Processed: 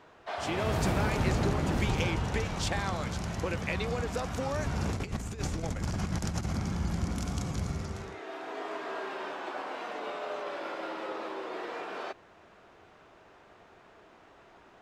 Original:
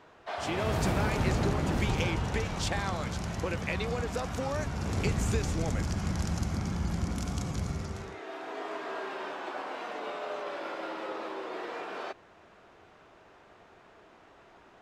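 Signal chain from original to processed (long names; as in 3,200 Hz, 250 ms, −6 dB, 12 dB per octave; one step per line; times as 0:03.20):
0:04.64–0:06.57: compressor whose output falls as the input rises −32 dBFS, ratio −0.5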